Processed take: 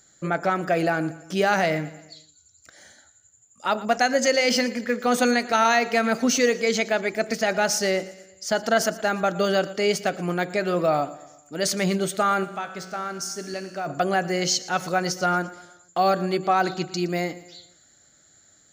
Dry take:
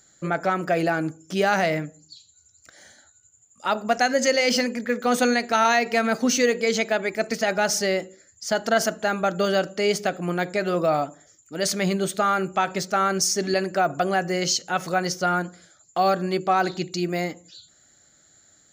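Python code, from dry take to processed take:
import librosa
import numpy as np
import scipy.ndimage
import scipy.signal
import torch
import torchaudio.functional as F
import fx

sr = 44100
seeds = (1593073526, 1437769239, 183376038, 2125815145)

y = fx.comb_fb(x, sr, f0_hz=60.0, decay_s=1.6, harmonics='all', damping=0.0, mix_pct=70, at=(12.43, 13.86), fade=0.02)
y = fx.echo_feedback(y, sr, ms=116, feedback_pct=50, wet_db=-18.0)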